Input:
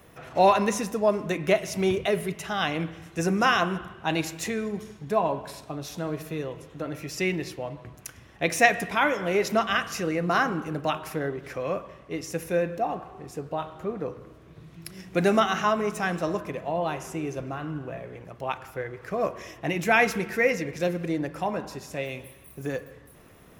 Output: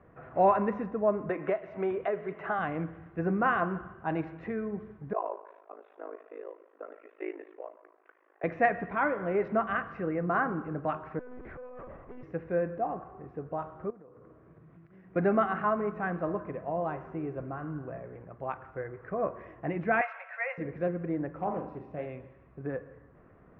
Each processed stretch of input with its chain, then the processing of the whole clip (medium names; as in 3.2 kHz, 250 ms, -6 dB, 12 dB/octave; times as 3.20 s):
1.29–2.59 s: tone controls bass -15 dB, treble -2 dB + band-stop 5.2 kHz, Q 18 + three bands compressed up and down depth 100%
5.13–8.44 s: Chebyshev band-pass 350–3600 Hz, order 5 + AM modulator 53 Hz, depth 100%
11.19–12.23 s: compressor with a negative ratio -36 dBFS + monotone LPC vocoder at 8 kHz 250 Hz + hard clipper -36.5 dBFS
13.90–15.16 s: compression 16:1, threshold -44 dBFS + high-pass 120 Hz 6 dB/octave
20.01–20.58 s: steep high-pass 560 Hz 96 dB/octave + peaking EQ 2.6 kHz +7 dB 0.47 oct
21.36–22.06 s: peaking EQ 1.6 kHz -12 dB 0.42 oct + flutter echo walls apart 6.8 m, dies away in 0.38 s + loudspeaker Doppler distortion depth 0.25 ms
whole clip: low-pass 1.7 kHz 24 dB/octave; band-stop 890 Hz, Q 18; trim -4 dB